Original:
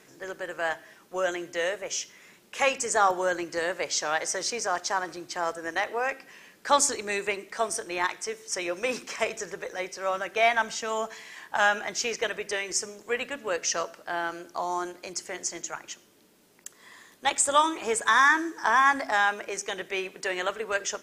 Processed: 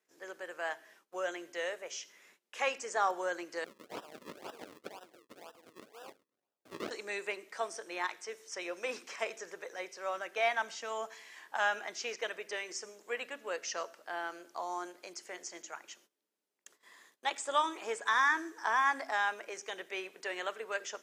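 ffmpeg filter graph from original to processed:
ffmpeg -i in.wav -filter_complex "[0:a]asettb=1/sr,asplit=3[link_01][link_02][link_03];[link_01]atrim=end=3.644[link_04];[link_02]atrim=start=3.64:end=6.91,asetpts=PTS-STARTPTS,afade=type=in:duration=0.004:curve=qsin,afade=type=out:start_time=3.266:duration=0.004:curve=qsin,highpass=frequency=950:poles=1,equalizer=frequency=1300:width=0.49:gain=-14.5,acrusher=samples=40:mix=1:aa=0.000001:lfo=1:lforange=40:lforate=2[link_05];[link_03]atrim=start=6.906[link_06];[link_04][link_05]acrossfade=duration=0.004:curve1=hsin:curve2=qsin[link_07];[link_07][link_06]acrossfade=duration=0.004:curve1=qsin:curve2=hsin,acrossover=split=6100[link_08][link_09];[link_09]acompressor=threshold=-47dB:ratio=4:attack=1:release=60[link_10];[link_08][link_10]amix=inputs=2:normalize=0,agate=range=-19dB:threshold=-53dB:ratio=16:detection=peak,highpass=330,volume=-8dB" out.wav

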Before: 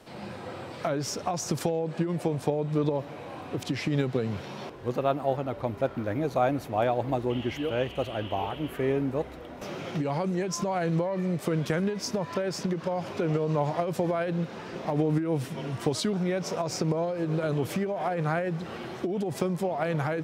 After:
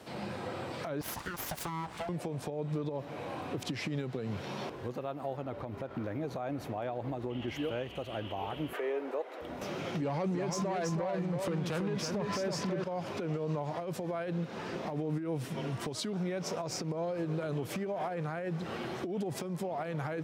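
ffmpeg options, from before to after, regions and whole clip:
ffmpeg -i in.wav -filter_complex "[0:a]asettb=1/sr,asplit=3[link_01][link_02][link_03];[link_01]atrim=end=1.014[link_04];[link_02]atrim=start=1.01:end=2.09,asetpts=PTS-STARTPTS,afade=type=in:duration=0.004:curve=qsin,afade=type=out:start_time=1.076:duration=0.004:curve=qsin,highpass=frequency=270:width=0.5412,highpass=frequency=270:width=1.3066,equalizer=frequency=8900:width=1.9:gain=5,aeval=exprs='abs(val(0))':channel_layout=same[link_05];[link_03]atrim=start=2.086[link_06];[link_04][link_05]acrossfade=duration=0.004:curve1=hsin:curve2=qsin[link_07];[link_07][link_06]acrossfade=duration=0.004:curve1=qsin:curve2=hsin,asettb=1/sr,asplit=3[link_08][link_09][link_10];[link_08]atrim=end=5.424[link_11];[link_09]atrim=start=5.42:end=7.48,asetpts=PTS-STARTPTS,afade=type=in:duration=0.004:curve=qsin,afade=type=out:start_time=2.056:duration=0.004:curve=qsin,highshelf=frequency=5100:gain=-6,acompressor=threshold=-29dB:ratio=3:attack=3.2:release=140:knee=1:detection=peak[link_12];[link_10]atrim=start=7.476[link_13];[link_11][link_12]acrossfade=duration=0.004:curve1=hsin:curve2=qsin[link_14];[link_14][link_13]acrossfade=duration=0.004:curve1=qsin:curve2=hsin,asettb=1/sr,asplit=3[link_15][link_16][link_17];[link_15]atrim=end=8.734[link_18];[link_16]atrim=start=8.73:end=9.41,asetpts=PTS-STARTPTS,afade=type=in:duration=0.004:curve=qsin,afade=type=out:start_time=0.676:duration=0.004:curve=qsin,highshelf=frequency=3900:gain=-9.5,acontrast=52,highpass=frequency=410:width=0.5412,highpass=frequency=410:width=1.3066[link_19];[link_17]atrim=start=9.406[link_20];[link_18][link_19]acrossfade=duration=0.004:curve1=hsin:curve2=qsin[link_21];[link_21][link_20]acrossfade=duration=0.004:curve1=qsin:curve2=hsin,asettb=1/sr,asplit=3[link_22][link_23][link_24];[link_22]atrim=end=10.024[link_25];[link_23]atrim=start=10.02:end=12.84,asetpts=PTS-STARTPTS,afade=type=in:duration=0.004:curve=qsin,afade=type=out:start_time=2.816:duration=0.004:curve=qsin,highshelf=frequency=11000:gain=-8,aeval=exprs='0.224*sin(PI/2*2.51*val(0)/0.224)':channel_layout=same,aecho=1:1:327:0.596,atrim=end_sample=124362[link_26];[link_24]atrim=start=12.836[link_27];[link_25][link_26]acrossfade=duration=0.004:curve1=hsin:curve2=qsin[link_28];[link_28][link_27]acrossfade=duration=0.004:curve1=qsin:curve2=hsin,highpass=63,acompressor=threshold=-37dB:ratio=2,alimiter=level_in=3.5dB:limit=-24dB:level=0:latency=1:release=147,volume=-3.5dB,volume=1.5dB" out.wav

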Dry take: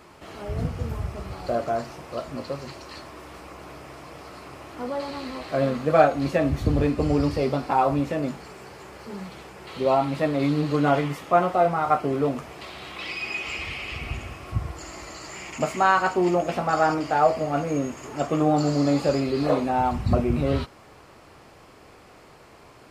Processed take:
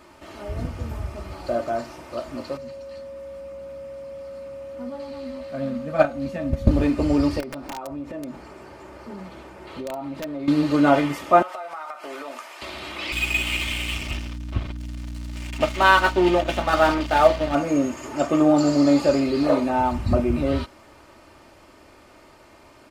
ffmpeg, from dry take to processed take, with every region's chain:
ffmpeg -i in.wav -filter_complex "[0:a]asettb=1/sr,asplit=3[link_01][link_02][link_03];[link_01]atrim=end=2.574[link_04];[link_02]atrim=start=2.57:end=6.71,asetpts=PTS-STARTPTS,afade=type=in:duration=0.004:curve=qsin,afade=type=out:start_time=4.136:duration=0.004:curve=qsin,lowshelf=frequency=280:width_type=q:width=3:gain=6,aeval=exprs='val(0)+0.0501*sin(2*PI*550*n/s)':channel_layout=same,agate=range=-10dB:threshold=-15dB:ratio=16:release=100:detection=peak[link_05];[link_03]atrim=start=6.706[link_06];[link_04][link_05]acrossfade=duration=0.004:curve1=hsin:curve2=qsin[link_07];[link_07][link_06]acrossfade=duration=0.004:curve1=qsin:curve2=hsin,asettb=1/sr,asplit=3[link_08][link_09][link_10];[link_08]atrim=end=7.404[link_11];[link_09]atrim=start=7.4:end=10.48,asetpts=PTS-STARTPTS,afade=type=in:duration=0.004:curve=qsin,afade=type=out:start_time=3.076:duration=0.004:curve=qsin,highshelf=frequency=2100:gain=-9.5,acompressor=threshold=-32dB:ratio=6:attack=3.2:release=140:knee=1:detection=peak,aeval=exprs='(mod(20*val(0)+1,2)-1)/20':channel_layout=same[link_12];[link_10]atrim=start=10.476[link_13];[link_11][link_12]acrossfade=duration=0.004:curve1=hsin:curve2=qsin[link_14];[link_14][link_13]acrossfade=duration=0.004:curve1=qsin:curve2=hsin,asettb=1/sr,asplit=3[link_15][link_16][link_17];[link_15]atrim=end=11.424[link_18];[link_16]atrim=start=11.42:end=12.62,asetpts=PTS-STARTPTS,afade=type=in:duration=0.004:curve=qsin,afade=type=out:start_time=1.196:duration=0.004:curve=qsin,highpass=890,acompressor=threshold=-33dB:ratio=20:attack=3.2:release=140:knee=1:detection=peak[link_19];[link_17]atrim=start=12.616[link_20];[link_18][link_19]acrossfade=duration=0.004:curve1=hsin:curve2=qsin[link_21];[link_21][link_20]acrossfade=duration=0.004:curve1=qsin:curve2=hsin,asettb=1/sr,asplit=3[link_22][link_23][link_24];[link_22]atrim=end=13.124[link_25];[link_23]atrim=start=13.12:end=17.55,asetpts=PTS-STARTPTS,afade=type=in:duration=0.004:curve=qsin,afade=type=out:start_time=4.426:duration=0.004:curve=qsin,lowpass=frequency=3500:width_type=q:width=4,aeval=exprs='sgn(val(0))*max(abs(val(0))-0.0224,0)':channel_layout=same,aeval=exprs='val(0)+0.0178*(sin(2*PI*60*n/s)+sin(2*PI*2*60*n/s)/2+sin(2*PI*3*60*n/s)/3+sin(2*PI*4*60*n/s)/4+sin(2*PI*5*60*n/s)/5)':channel_layout=same[link_26];[link_24]atrim=start=17.546[link_27];[link_25][link_26]acrossfade=duration=0.004:curve1=hsin:curve2=qsin[link_28];[link_28][link_27]acrossfade=duration=0.004:curve1=qsin:curve2=hsin,aecho=1:1:3.3:0.49,dynaudnorm=framelen=240:gausssize=31:maxgain=11.5dB,volume=-1dB" out.wav

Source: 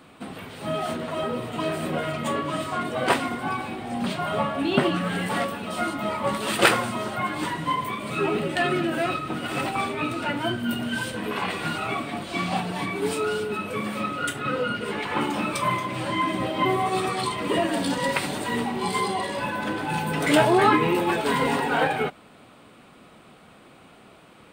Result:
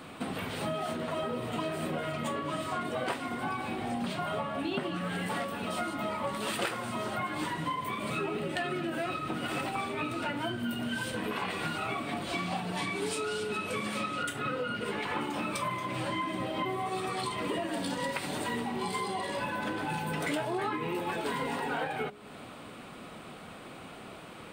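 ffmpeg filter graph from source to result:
ffmpeg -i in.wav -filter_complex "[0:a]asettb=1/sr,asplit=3[link_01][link_02][link_03];[link_01]atrim=end=12.774[link_04];[link_02]atrim=start=12.77:end=14.23,asetpts=PTS-STARTPTS,afade=type=in:duration=0.004:curve=qsin,afade=type=out:start_time=1.456:duration=0.004:curve=qsin,lowpass=6700,aemphasis=mode=production:type=75kf[link_05];[link_03]atrim=start=14.226[link_06];[link_04][link_05]acrossfade=duration=0.004:curve1=hsin:curve2=qsin[link_07];[link_07][link_06]acrossfade=duration=0.004:curve1=qsin:curve2=hsin,bandreject=frequency=68.96:width_type=h:width=4,bandreject=frequency=137.92:width_type=h:width=4,bandreject=frequency=206.88:width_type=h:width=4,bandreject=frequency=275.84:width_type=h:width=4,bandreject=frequency=344.8:width_type=h:width=4,bandreject=frequency=413.76:width_type=h:width=4,acompressor=threshold=-36dB:ratio=6,volume=4.5dB" out.wav

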